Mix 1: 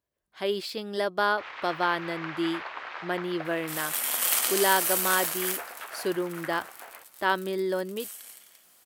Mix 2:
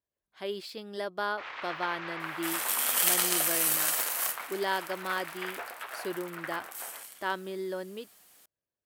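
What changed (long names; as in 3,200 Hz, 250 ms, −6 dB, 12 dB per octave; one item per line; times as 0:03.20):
speech −7.0 dB
second sound: entry −1.25 s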